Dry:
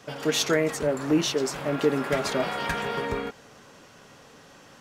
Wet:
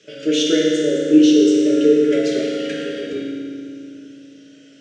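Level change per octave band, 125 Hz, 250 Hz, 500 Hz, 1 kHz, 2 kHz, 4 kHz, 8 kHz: -2.0, +14.0, +9.0, -11.0, -0.5, +6.0, +2.0 dB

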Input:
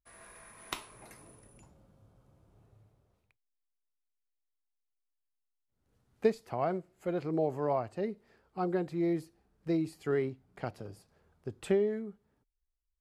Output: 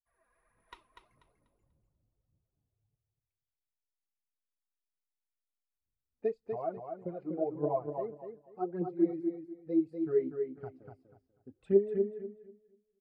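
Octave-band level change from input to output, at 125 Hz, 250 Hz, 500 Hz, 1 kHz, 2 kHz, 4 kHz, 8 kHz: -6.0 dB, +0.5 dB, +0.5 dB, -4.0 dB, under -10 dB, under -15 dB, n/a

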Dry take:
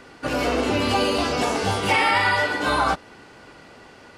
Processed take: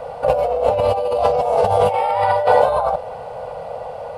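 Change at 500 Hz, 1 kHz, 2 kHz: +10.0, +5.5, -9.5 dB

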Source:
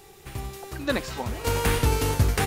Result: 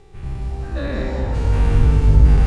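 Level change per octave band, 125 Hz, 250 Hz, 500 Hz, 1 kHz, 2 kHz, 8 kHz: +10.0, +5.5, +0.5, -2.5, -3.0, -13.0 dB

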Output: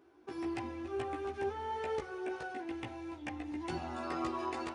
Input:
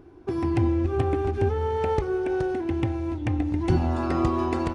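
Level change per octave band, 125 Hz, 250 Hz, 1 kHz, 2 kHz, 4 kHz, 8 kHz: -24.5 dB, -14.5 dB, -9.0 dB, -6.0 dB, -6.0 dB, n/a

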